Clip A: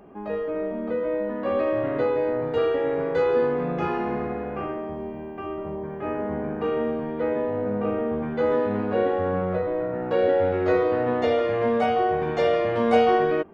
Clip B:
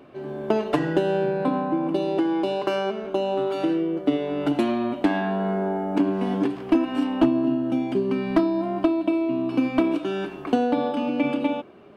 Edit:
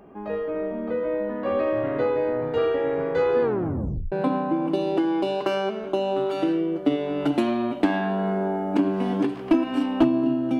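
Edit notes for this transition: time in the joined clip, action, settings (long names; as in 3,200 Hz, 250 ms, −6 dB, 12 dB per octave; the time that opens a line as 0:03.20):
clip A
0:03.42: tape stop 0.70 s
0:04.12: continue with clip B from 0:01.33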